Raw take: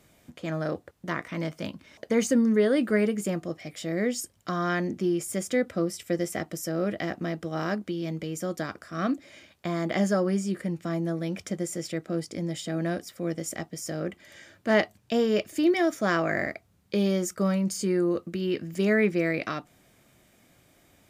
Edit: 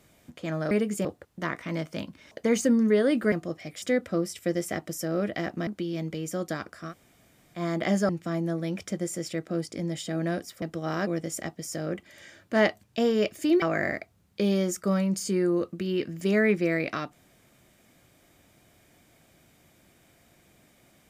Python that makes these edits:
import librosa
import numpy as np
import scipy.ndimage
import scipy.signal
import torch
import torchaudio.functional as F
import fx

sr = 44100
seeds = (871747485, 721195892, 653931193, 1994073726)

y = fx.edit(x, sr, fx.move(start_s=2.98, length_s=0.34, to_s=0.71),
    fx.cut(start_s=3.82, length_s=1.64),
    fx.move(start_s=7.31, length_s=0.45, to_s=13.21),
    fx.room_tone_fill(start_s=8.98, length_s=0.69, crossfade_s=0.1),
    fx.cut(start_s=10.18, length_s=0.5),
    fx.cut(start_s=15.76, length_s=0.4), tone=tone)